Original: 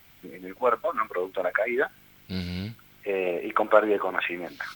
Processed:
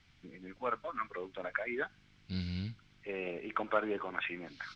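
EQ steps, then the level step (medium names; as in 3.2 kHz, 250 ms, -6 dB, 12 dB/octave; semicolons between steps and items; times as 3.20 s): four-pole ladder low-pass 6.5 kHz, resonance 35%; peaking EQ 580 Hz -12 dB 2.2 oct; treble shelf 2.2 kHz -10 dB; +5.5 dB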